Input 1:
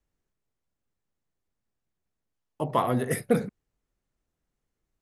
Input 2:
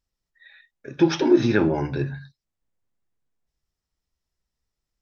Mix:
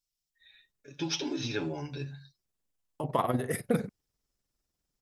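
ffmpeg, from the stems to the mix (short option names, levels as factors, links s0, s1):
-filter_complex "[0:a]tremolo=f=20:d=0.667,adelay=400,volume=0.944[s0];[1:a]aecho=1:1:7:0.72,aexciter=amount=4.1:drive=5.4:freq=2500,volume=0.168[s1];[s0][s1]amix=inputs=2:normalize=0"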